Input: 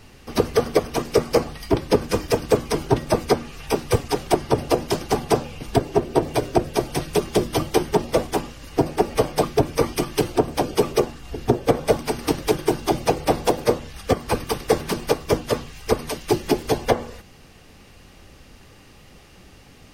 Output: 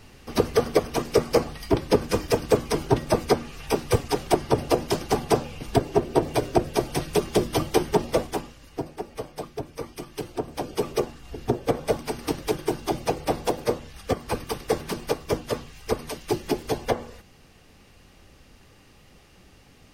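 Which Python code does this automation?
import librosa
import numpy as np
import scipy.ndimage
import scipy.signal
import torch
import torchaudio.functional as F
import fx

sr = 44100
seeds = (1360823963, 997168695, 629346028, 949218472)

y = fx.gain(x, sr, db=fx.line((8.08, -2.0), (9.02, -14.5), (9.92, -14.5), (10.99, -5.5)))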